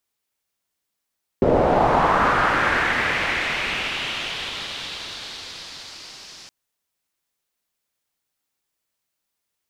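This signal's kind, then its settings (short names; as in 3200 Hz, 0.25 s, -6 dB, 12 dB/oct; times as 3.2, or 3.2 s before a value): swept filtered noise white, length 5.07 s lowpass, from 410 Hz, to 5200 Hz, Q 2.5, linear, gain ramp -37.5 dB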